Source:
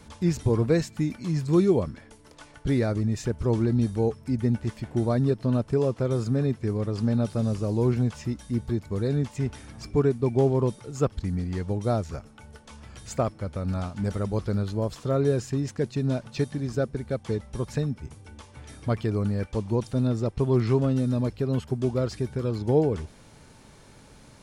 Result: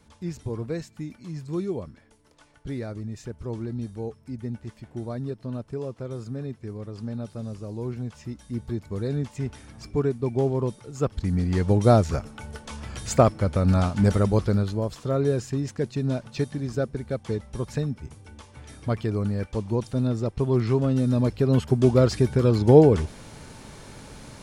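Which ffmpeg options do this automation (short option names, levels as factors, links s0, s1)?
-af "volume=6.68,afade=t=in:st=7.99:d=0.86:silence=0.473151,afade=t=in:st=10.99:d=0.8:silence=0.298538,afade=t=out:st=14.05:d=0.78:silence=0.375837,afade=t=in:st=20.79:d=1.21:silence=0.398107"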